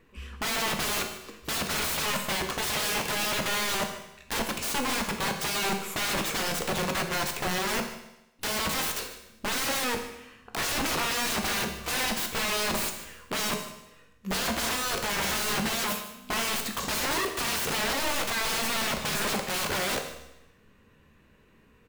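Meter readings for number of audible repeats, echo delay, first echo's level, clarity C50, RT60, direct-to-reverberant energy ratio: 1, 150 ms, -16.0 dB, 7.5 dB, 0.90 s, 4.0 dB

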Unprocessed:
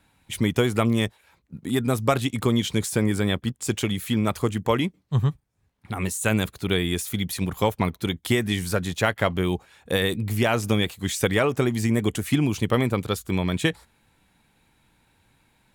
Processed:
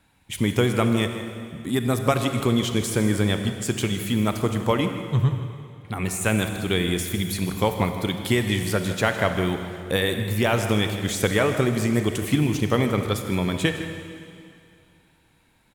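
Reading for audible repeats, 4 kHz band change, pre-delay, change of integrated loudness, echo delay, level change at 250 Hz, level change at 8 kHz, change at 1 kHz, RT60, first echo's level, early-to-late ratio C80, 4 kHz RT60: 1, +1.0 dB, 30 ms, +1.0 dB, 158 ms, +1.0 dB, +1.0 dB, +1.0 dB, 2.5 s, -13.0 dB, 7.0 dB, 2.3 s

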